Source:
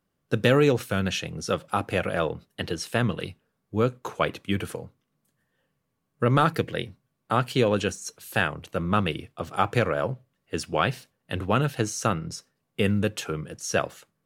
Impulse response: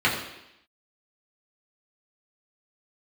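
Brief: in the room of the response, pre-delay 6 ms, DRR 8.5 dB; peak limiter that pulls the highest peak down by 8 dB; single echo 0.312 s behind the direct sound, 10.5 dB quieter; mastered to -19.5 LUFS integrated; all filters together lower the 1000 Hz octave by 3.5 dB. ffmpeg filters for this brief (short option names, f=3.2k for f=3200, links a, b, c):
-filter_complex "[0:a]equalizer=f=1k:t=o:g=-5,alimiter=limit=-16dB:level=0:latency=1,aecho=1:1:312:0.299,asplit=2[a][b];[1:a]atrim=start_sample=2205,adelay=6[c];[b][c]afir=irnorm=-1:irlink=0,volume=-25.5dB[d];[a][d]amix=inputs=2:normalize=0,volume=10.5dB"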